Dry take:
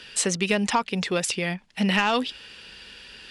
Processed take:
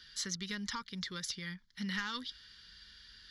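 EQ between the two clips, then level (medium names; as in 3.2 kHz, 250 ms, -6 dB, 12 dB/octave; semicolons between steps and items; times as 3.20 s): amplifier tone stack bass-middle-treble 5-5-5; bass shelf 120 Hz +9.5 dB; static phaser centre 2.6 kHz, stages 6; 0.0 dB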